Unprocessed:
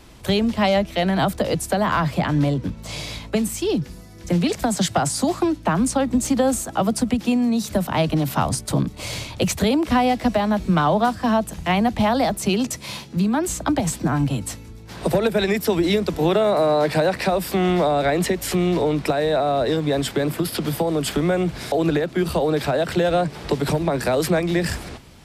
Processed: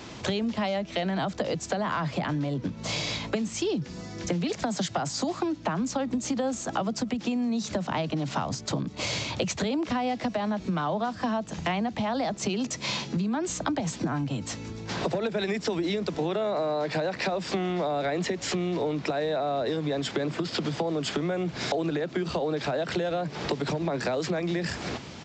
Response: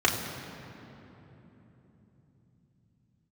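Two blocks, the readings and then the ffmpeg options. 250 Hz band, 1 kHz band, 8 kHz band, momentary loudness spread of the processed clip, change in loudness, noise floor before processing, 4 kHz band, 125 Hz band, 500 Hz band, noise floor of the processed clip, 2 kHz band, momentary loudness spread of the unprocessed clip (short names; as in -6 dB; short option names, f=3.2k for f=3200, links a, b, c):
-8.5 dB, -8.5 dB, -7.5 dB, 3 LU, -8.0 dB, -40 dBFS, -5.0 dB, -9.0 dB, -8.0 dB, -42 dBFS, -6.5 dB, 6 LU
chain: -filter_complex "[0:a]asplit=2[a][b];[b]alimiter=limit=-17.5dB:level=0:latency=1:release=123,volume=1.5dB[c];[a][c]amix=inputs=2:normalize=0,acompressor=threshold=-26dB:ratio=6,highpass=120,aresample=16000,aresample=44100"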